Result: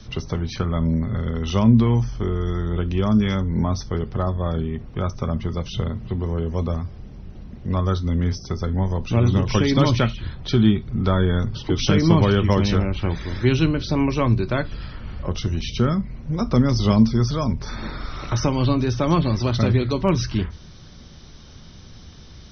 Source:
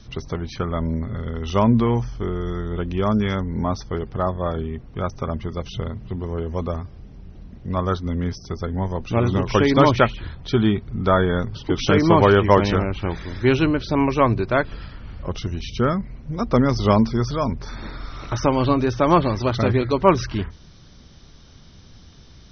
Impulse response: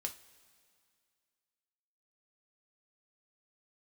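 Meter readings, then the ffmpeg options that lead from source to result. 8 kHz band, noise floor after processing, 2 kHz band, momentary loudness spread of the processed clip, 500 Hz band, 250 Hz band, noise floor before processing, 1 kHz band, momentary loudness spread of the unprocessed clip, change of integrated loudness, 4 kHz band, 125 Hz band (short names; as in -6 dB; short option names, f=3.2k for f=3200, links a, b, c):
n/a, -43 dBFS, -4.0 dB, 11 LU, -4.5 dB, +1.0 dB, -46 dBFS, -6.5 dB, 13 LU, -0.5 dB, +1.5 dB, +3.5 dB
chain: -filter_complex "[0:a]acrossover=split=260|3000[a][b][c];[b]acompressor=threshold=-35dB:ratio=2[d];[a][d][c]amix=inputs=3:normalize=0,asplit=2[e][f];[1:a]atrim=start_sample=2205,atrim=end_sample=3969[g];[f][g]afir=irnorm=-1:irlink=0,volume=-1dB[h];[e][h]amix=inputs=2:normalize=0,volume=-1dB"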